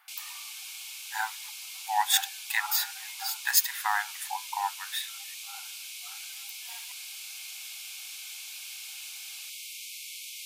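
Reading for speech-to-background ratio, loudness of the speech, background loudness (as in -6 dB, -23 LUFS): 10.0 dB, -29.0 LUFS, -39.0 LUFS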